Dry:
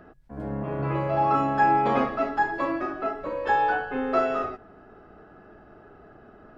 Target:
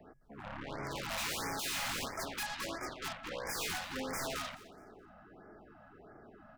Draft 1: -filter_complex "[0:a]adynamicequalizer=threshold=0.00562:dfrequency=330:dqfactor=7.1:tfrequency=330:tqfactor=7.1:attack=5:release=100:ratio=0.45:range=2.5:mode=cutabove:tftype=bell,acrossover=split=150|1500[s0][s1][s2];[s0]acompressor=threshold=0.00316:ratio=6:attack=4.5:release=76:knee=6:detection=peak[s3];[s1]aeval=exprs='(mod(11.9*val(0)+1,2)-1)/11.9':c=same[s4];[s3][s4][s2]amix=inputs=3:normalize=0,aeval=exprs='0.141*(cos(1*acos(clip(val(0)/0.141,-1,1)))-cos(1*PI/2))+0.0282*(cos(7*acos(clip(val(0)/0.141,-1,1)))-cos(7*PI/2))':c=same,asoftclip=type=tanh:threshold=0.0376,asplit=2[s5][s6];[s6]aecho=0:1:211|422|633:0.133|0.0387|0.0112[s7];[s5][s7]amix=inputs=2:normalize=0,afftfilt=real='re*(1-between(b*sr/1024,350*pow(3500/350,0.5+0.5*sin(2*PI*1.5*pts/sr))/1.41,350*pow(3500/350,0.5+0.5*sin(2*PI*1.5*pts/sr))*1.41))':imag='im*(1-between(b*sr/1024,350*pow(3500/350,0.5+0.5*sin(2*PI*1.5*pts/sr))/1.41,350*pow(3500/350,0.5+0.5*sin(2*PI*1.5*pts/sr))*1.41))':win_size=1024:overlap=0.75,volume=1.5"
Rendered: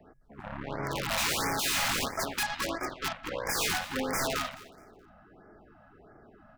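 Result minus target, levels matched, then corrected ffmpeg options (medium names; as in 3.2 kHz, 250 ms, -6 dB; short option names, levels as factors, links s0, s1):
compression: peak gain reduction -8.5 dB; saturation: distortion -6 dB
-filter_complex "[0:a]adynamicequalizer=threshold=0.00562:dfrequency=330:dqfactor=7.1:tfrequency=330:tqfactor=7.1:attack=5:release=100:ratio=0.45:range=2.5:mode=cutabove:tftype=bell,acrossover=split=150|1500[s0][s1][s2];[s0]acompressor=threshold=0.001:ratio=6:attack=4.5:release=76:knee=6:detection=peak[s3];[s1]aeval=exprs='(mod(11.9*val(0)+1,2)-1)/11.9':c=same[s4];[s3][s4][s2]amix=inputs=3:normalize=0,aeval=exprs='0.141*(cos(1*acos(clip(val(0)/0.141,-1,1)))-cos(1*PI/2))+0.0282*(cos(7*acos(clip(val(0)/0.141,-1,1)))-cos(7*PI/2))':c=same,asoftclip=type=tanh:threshold=0.0126,asplit=2[s5][s6];[s6]aecho=0:1:211|422|633:0.133|0.0387|0.0112[s7];[s5][s7]amix=inputs=2:normalize=0,afftfilt=real='re*(1-between(b*sr/1024,350*pow(3500/350,0.5+0.5*sin(2*PI*1.5*pts/sr))/1.41,350*pow(3500/350,0.5+0.5*sin(2*PI*1.5*pts/sr))*1.41))':imag='im*(1-between(b*sr/1024,350*pow(3500/350,0.5+0.5*sin(2*PI*1.5*pts/sr))/1.41,350*pow(3500/350,0.5+0.5*sin(2*PI*1.5*pts/sr))*1.41))':win_size=1024:overlap=0.75,volume=1.5"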